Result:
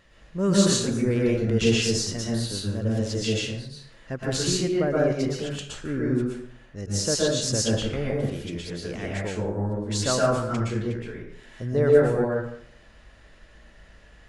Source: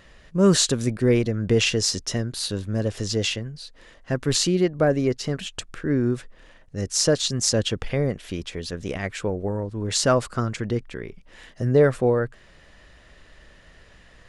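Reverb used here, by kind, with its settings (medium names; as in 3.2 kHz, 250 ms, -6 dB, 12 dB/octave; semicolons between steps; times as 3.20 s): plate-style reverb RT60 0.66 s, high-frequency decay 0.6×, pre-delay 105 ms, DRR -4.5 dB; trim -7.5 dB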